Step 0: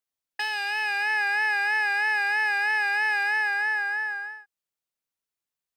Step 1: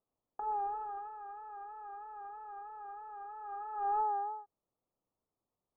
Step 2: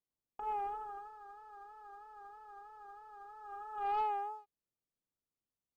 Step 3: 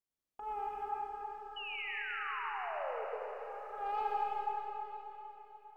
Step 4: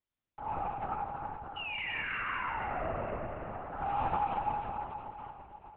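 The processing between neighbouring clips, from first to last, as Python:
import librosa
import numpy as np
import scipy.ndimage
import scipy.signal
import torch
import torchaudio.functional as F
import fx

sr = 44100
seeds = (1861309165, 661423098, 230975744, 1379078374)

y1 = fx.wiener(x, sr, points=25)
y1 = scipy.signal.sosfilt(scipy.signal.ellip(4, 1.0, 40, 1300.0, 'lowpass', fs=sr, output='sos'), y1)
y1 = fx.over_compress(y1, sr, threshold_db=-42.0, ratio=-0.5)
y1 = y1 * 10.0 ** (4.0 / 20.0)
y2 = fx.peak_eq(y1, sr, hz=710.0, db=-7.5, octaves=1.5)
y2 = fx.leveller(y2, sr, passes=1)
y2 = fx.upward_expand(y2, sr, threshold_db=-51.0, expansion=1.5)
y2 = y2 * 10.0 ** (3.0 / 20.0)
y3 = fx.spec_paint(y2, sr, seeds[0], shape='fall', start_s=1.56, length_s=1.49, low_hz=420.0, high_hz=3000.0, level_db=-41.0)
y3 = fx.rev_freeverb(y3, sr, rt60_s=4.0, hf_ratio=0.9, predelay_ms=50, drr_db=-3.5)
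y3 = y3 * 10.0 ** (-3.0 / 20.0)
y4 = fx.lpc_vocoder(y3, sr, seeds[1], excitation='whisper', order=8)
y4 = y4 * 10.0 ** (3.5 / 20.0)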